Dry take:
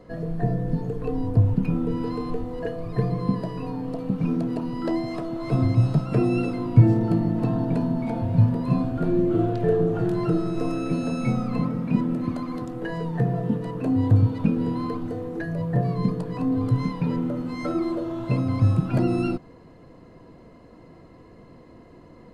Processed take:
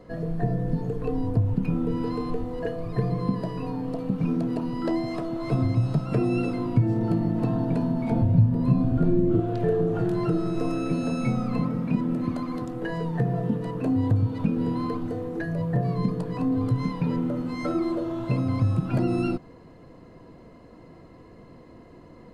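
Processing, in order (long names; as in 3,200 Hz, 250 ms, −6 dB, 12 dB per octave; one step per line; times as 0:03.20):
0:08.11–0:09.40: low-shelf EQ 350 Hz +11 dB
downward compressor 2.5 to 1, threshold −20 dBFS, peak gain reduction 11.5 dB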